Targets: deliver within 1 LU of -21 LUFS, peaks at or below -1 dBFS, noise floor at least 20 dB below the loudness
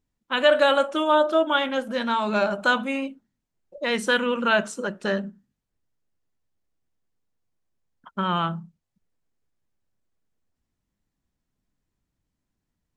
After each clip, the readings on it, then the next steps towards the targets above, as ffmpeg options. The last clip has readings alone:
loudness -23.0 LUFS; peak level -6.0 dBFS; loudness target -21.0 LUFS
-> -af "volume=1.26"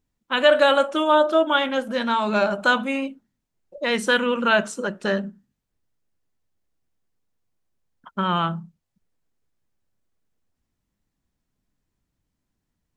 loudness -21.0 LUFS; peak level -4.0 dBFS; noise floor -80 dBFS

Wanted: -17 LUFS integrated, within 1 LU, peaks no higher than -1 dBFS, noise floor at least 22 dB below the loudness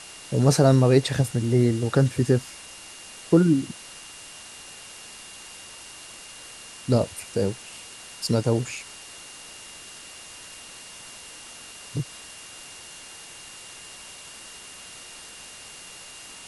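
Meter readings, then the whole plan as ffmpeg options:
steady tone 2.8 kHz; tone level -48 dBFS; noise floor -43 dBFS; noise floor target -45 dBFS; loudness -23.0 LUFS; peak level -5.0 dBFS; loudness target -17.0 LUFS
-> -af "bandreject=f=2800:w=30"
-af "afftdn=nr=6:nf=-43"
-af "volume=2,alimiter=limit=0.891:level=0:latency=1"

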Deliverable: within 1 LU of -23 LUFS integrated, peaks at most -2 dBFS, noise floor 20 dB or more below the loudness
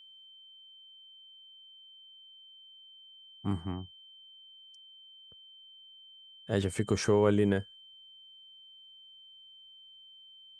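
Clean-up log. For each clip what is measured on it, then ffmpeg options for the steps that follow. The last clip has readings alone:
steady tone 3.1 kHz; tone level -52 dBFS; loudness -30.0 LUFS; peak level -13.0 dBFS; loudness target -23.0 LUFS
-> -af "bandreject=f=3100:w=30"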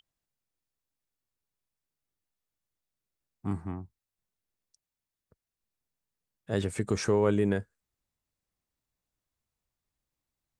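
steady tone not found; loudness -30.0 LUFS; peak level -13.0 dBFS; loudness target -23.0 LUFS
-> -af "volume=2.24"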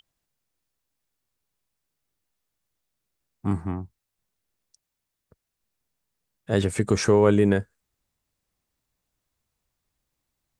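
loudness -23.0 LUFS; peak level -6.0 dBFS; noise floor -83 dBFS

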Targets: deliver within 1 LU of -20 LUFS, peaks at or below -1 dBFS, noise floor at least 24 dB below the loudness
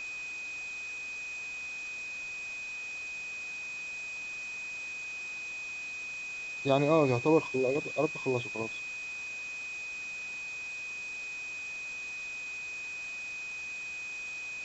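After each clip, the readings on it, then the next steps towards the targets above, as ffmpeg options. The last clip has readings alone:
steady tone 2.5 kHz; tone level -37 dBFS; noise floor -40 dBFS; noise floor target -58 dBFS; loudness -34.0 LUFS; peak level -12.5 dBFS; loudness target -20.0 LUFS
-> -af "bandreject=f=2500:w=30"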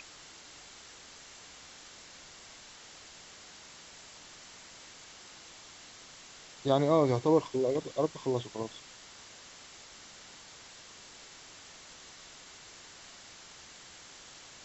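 steady tone not found; noise floor -52 dBFS; noise floor target -54 dBFS
-> -af "afftdn=nr=6:nf=-52"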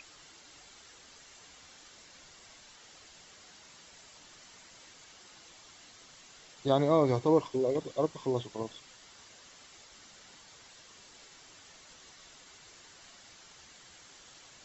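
noise floor -56 dBFS; loudness -29.5 LUFS; peak level -13.0 dBFS; loudness target -20.0 LUFS
-> -af "volume=2.99"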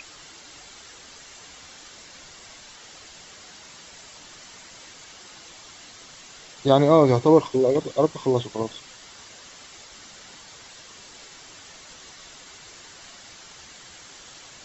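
loudness -20.0 LUFS; peak level -3.5 dBFS; noise floor -46 dBFS

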